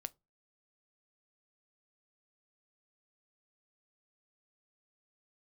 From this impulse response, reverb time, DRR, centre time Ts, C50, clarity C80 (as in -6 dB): 0.25 s, 13.5 dB, 2 ms, 28.5 dB, 37.0 dB